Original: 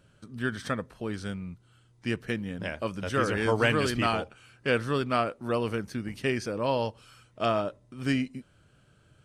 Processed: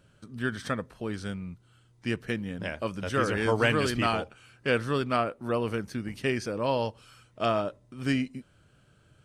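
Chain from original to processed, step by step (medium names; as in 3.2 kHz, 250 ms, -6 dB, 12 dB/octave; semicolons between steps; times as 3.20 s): 5.16–5.68 s: dynamic bell 5.7 kHz, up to -6 dB, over -51 dBFS, Q 0.8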